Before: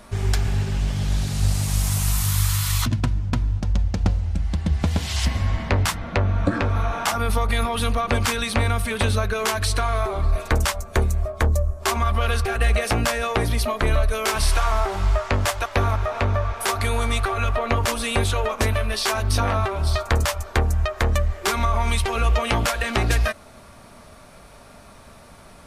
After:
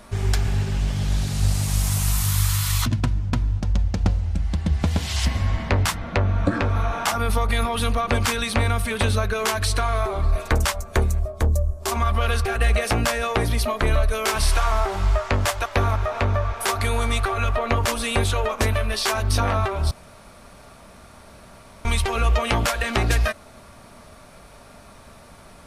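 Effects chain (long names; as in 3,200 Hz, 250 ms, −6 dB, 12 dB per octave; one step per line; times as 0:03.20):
0:11.19–0:11.92: parametric band 1,800 Hz −8.5 dB 2.3 octaves
0:19.91–0:21.85: fill with room tone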